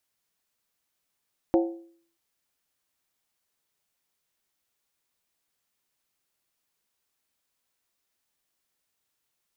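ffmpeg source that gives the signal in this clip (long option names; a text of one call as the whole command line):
ffmpeg -f lavfi -i "aevalsrc='0.158*pow(10,-3*t/0.55)*sin(2*PI*336*t)+0.0841*pow(10,-3*t/0.436)*sin(2*PI*535.6*t)+0.0447*pow(10,-3*t/0.376)*sin(2*PI*717.7*t)+0.0237*pow(10,-3*t/0.363)*sin(2*PI*771.5*t)+0.0126*pow(10,-3*t/0.338)*sin(2*PI*891.4*t)':duration=0.63:sample_rate=44100" out.wav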